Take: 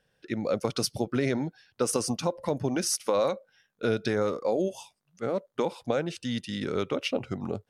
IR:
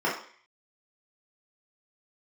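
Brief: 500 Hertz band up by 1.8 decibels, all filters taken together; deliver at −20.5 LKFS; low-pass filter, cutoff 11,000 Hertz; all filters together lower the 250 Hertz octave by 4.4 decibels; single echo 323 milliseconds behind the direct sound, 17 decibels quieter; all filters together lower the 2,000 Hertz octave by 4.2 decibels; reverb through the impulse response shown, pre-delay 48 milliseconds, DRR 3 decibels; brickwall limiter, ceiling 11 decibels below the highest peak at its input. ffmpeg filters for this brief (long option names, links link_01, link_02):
-filter_complex "[0:a]lowpass=11000,equalizer=frequency=250:width_type=o:gain=-7,equalizer=frequency=500:width_type=o:gain=4,equalizer=frequency=2000:width_type=o:gain=-6,alimiter=limit=-22dB:level=0:latency=1,aecho=1:1:323:0.141,asplit=2[link_01][link_02];[1:a]atrim=start_sample=2205,adelay=48[link_03];[link_02][link_03]afir=irnorm=-1:irlink=0,volume=-16dB[link_04];[link_01][link_04]amix=inputs=2:normalize=0,volume=10.5dB"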